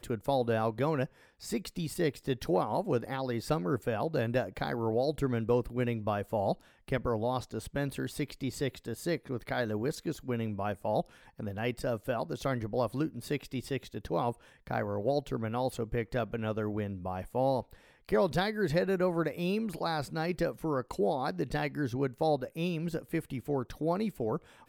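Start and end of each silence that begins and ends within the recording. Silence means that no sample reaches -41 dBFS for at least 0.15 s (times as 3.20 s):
1.06–1.43 s
6.54–6.88 s
11.02–11.39 s
14.32–14.67 s
17.73–18.09 s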